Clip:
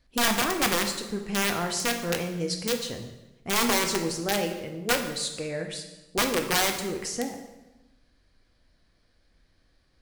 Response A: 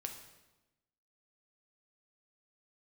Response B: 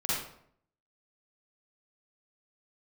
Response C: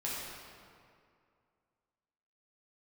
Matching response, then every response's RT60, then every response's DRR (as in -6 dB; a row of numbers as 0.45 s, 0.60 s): A; 1.0 s, 0.65 s, 2.3 s; 3.5 dB, -9.5 dB, -7.5 dB